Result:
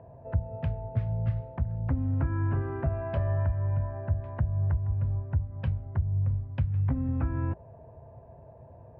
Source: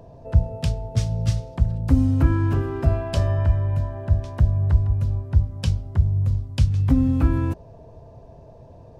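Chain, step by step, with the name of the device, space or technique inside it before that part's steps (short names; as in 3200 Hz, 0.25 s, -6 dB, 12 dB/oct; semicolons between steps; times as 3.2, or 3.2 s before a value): bass amplifier (compressor 4:1, threshold -19 dBFS, peak gain reduction 8 dB; speaker cabinet 67–2000 Hz, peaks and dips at 180 Hz -6 dB, 290 Hz -8 dB, 440 Hz -5 dB, 1200 Hz -3 dB); gain -2.5 dB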